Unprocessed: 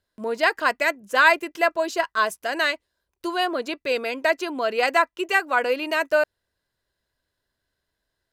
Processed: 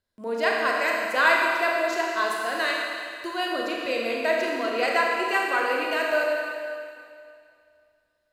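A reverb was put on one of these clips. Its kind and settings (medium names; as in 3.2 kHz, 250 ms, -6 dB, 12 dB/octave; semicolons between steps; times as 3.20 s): Schroeder reverb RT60 2.3 s, combs from 27 ms, DRR -2 dB; trim -5.5 dB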